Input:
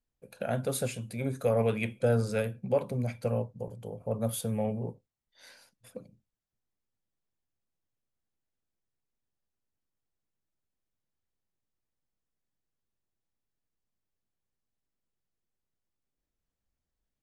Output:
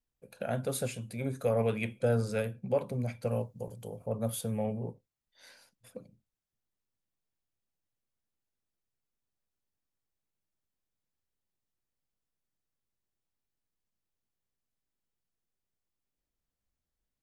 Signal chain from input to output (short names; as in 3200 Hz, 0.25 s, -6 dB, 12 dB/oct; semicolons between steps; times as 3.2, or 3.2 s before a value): 3.31–4.06 high shelf 3500 Hz +10.5 dB; gain -2 dB